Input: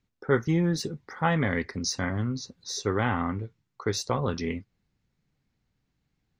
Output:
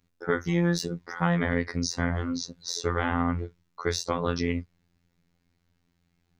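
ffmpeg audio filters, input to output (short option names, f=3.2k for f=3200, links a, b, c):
-filter_complex "[0:a]acrossover=split=150|490|1100[a][b][c][d];[a]acompressor=threshold=-37dB:ratio=4[e];[b]acompressor=threshold=-36dB:ratio=4[f];[c]acompressor=threshold=-36dB:ratio=4[g];[d]acompressor=threshold=-35dB:ratio=4[h];[e][f][g][h]amix=inputs=4:normalize=0,afftfilt=real='hypot(re,im)*cos(PI*b)':imag='0':win_size=2048:overlap=0.75,volume=8dB"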